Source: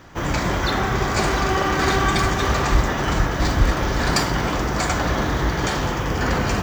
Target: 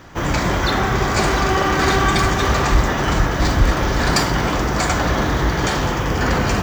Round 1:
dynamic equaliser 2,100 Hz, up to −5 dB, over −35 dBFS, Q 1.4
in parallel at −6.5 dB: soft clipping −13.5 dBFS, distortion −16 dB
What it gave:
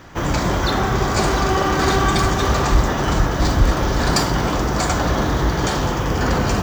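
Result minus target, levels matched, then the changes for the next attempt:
2,000 Hz band −2.5 dB
remove: dynamic equaliser 2,100 Hz, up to −5 dB, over −35 dBFS, Q 1.4

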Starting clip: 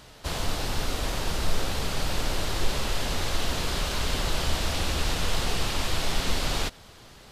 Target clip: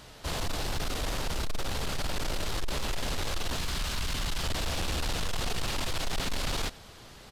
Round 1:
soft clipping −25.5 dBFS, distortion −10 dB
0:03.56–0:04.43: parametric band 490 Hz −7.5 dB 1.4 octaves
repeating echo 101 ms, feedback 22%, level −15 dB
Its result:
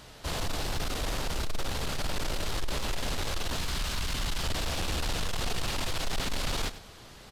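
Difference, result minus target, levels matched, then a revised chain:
echo-to-direct +11 dB
soft clipping −25.5 dBFS, distortion −10 dB
0:03.56–0:04.43: parametric band 490 Hz −7.5 dB 1.4 octaves
repeating echo 101 ms, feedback 22%, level −26 dB

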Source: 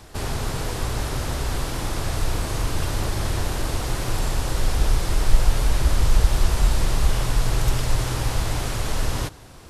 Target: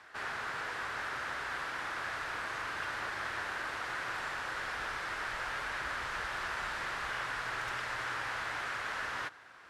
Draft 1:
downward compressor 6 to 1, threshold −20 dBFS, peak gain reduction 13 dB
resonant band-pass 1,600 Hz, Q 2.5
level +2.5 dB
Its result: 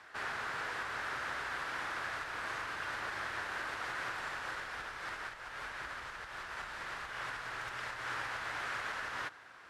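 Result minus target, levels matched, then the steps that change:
downward compressor: peak gain reduction +13 dB
remove: downward compressor 6 to 1, threshold −20 dBFS, peak gain reduction 13 dB

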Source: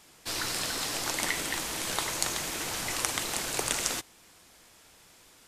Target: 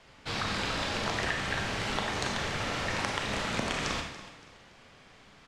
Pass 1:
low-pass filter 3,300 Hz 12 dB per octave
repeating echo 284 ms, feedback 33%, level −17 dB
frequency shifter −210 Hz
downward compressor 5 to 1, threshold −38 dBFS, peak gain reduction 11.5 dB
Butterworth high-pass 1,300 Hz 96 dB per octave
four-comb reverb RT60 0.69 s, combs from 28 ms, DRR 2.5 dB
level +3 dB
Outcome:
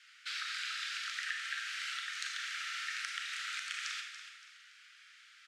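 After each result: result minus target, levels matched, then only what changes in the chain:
1,000 Hz band −6.5 dB; downward compressor: peak gain reduction +5.5 dB
remove: Butterworth high-pass 1,300 Hz 96 dB per octave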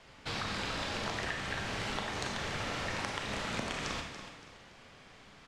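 downward compressor: peak gain reduction +5.5 dB
change: downward compressor 5 to 1, threshold −31 dBFS, peak gain reduction 5.5 dB

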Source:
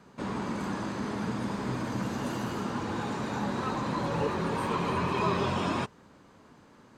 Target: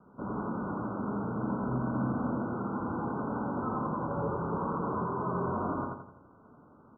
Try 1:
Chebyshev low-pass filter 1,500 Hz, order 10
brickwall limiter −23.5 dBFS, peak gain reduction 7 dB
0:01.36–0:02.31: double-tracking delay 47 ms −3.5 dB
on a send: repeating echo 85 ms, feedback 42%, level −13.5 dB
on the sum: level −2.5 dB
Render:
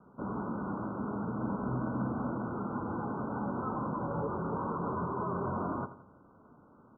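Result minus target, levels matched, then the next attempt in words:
echo-to-direct −11 dB
Chebyshev low-pass filter 1,500 Hz, order 10
brickwall limiter −23.5 dBFS, peak gain reduction 7 dB
0:01.36–0:02.31: double-tracking delay 47 ms −3.5 dB
on a send: repeating echo 85 ms, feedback 42%, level −2.5 dB
on the sum: level −2.5 dB

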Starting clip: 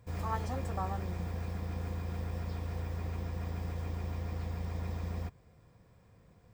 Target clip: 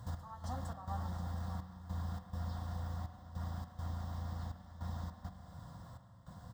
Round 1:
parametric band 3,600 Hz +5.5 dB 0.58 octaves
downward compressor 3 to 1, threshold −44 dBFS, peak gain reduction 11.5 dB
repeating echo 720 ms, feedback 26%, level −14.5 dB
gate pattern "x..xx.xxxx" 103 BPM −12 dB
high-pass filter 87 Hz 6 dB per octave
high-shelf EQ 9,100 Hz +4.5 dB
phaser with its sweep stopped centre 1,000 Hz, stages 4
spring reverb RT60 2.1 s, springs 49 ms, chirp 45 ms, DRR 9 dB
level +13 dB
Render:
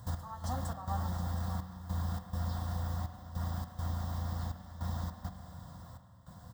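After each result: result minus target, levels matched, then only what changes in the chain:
downward compressor: peak gain reduction −5 dB; 8,000 Hz band +3.0 dB
change: downward compressor 3 to 1, threshold −51.5 dBFS, peak gain reduction 16.5 dB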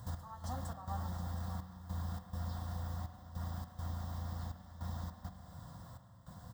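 8,000 Hz band +3.5 dB
change: high-shelf EQ 9,100 Hz −5.5 dB

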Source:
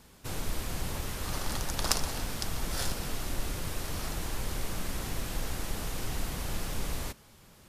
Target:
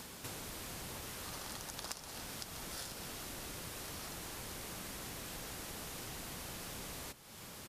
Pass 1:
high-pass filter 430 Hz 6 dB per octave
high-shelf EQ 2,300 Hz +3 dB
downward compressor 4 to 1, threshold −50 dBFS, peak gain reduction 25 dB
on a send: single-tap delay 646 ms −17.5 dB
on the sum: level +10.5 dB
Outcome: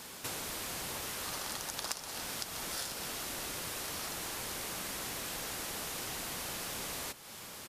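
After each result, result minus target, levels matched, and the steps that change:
125 Hz band −6.5 dB; downward compressor: peak gain reduction −6 dB
change: high-pass filter 150 Hz 6 dB per octave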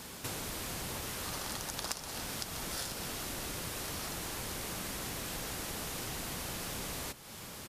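downward compressor: peak gain reduction −6 dB
change: downward compressor 4 to 1, threshold −58 dBFS, peak gain reduction 31 dB

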